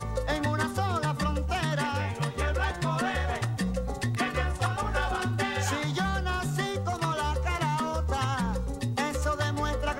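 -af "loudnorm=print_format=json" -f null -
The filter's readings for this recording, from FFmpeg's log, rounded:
"input_i" : "-29.3",
"input_tp" : "-15.9",
"input_lra" : "0.3",
"input_thresh" : "-39.3",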